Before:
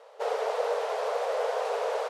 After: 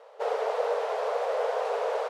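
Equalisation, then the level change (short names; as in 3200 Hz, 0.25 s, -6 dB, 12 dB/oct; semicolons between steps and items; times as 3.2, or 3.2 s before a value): high shelf 3800 Hz -7 dB; +1.0 dB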